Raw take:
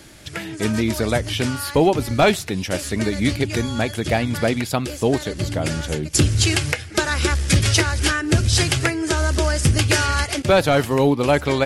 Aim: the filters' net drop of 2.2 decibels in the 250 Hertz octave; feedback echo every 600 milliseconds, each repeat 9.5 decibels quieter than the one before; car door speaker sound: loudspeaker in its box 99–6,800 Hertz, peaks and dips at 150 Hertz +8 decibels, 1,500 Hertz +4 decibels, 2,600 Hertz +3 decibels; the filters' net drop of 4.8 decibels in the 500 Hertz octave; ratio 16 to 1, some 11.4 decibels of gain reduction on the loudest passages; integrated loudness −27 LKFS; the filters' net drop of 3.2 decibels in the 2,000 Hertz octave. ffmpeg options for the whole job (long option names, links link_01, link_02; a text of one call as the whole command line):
ffmpeg -i in.wav -af "equalizer=frequency=250:width_type=o:gain=-3,equalizer=frequency=500:width_type=o:gain=-5,equalizer=frequency=2000:width_type=o:gain=-8,acompressor=threshold=-24dB:ratio=16,highpass=99,equalizer=frequency=150:width_type=q:width=4:gain=8,equalizer=frequency=1500:width_type=q:width=4:gain=4,equalizer=frequency=2600:width_type=q:width=4:gain=3,lowpass=frequency=6800:width=0.5412,lowpass=frequency=6800:width=1.3066,aecho=1:1:600|1200|1800|2400:0.335|0.111|0.0365|0.012,volume=1.5dB" out.wav